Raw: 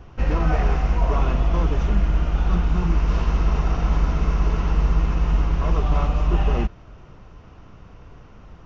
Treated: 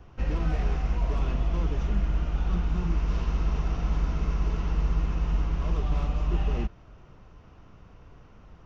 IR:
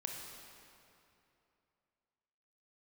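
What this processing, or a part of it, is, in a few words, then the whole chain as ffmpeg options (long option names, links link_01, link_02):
one-band saturation: -filter_complex "[0:a]acrossover=split=430|2200[link_01][link_02][link_03];[link_02]asoftclip=type=tanh:threshold=-33.5dB[link_04];[link_01][link_04][link_03]amix=inputs=3:normalize=0,volume=-6.5dB"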